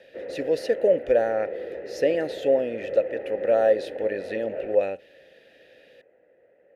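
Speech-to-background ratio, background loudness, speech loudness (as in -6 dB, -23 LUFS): 10.0 dB, -35.0 LUFS, -25.0 LUFS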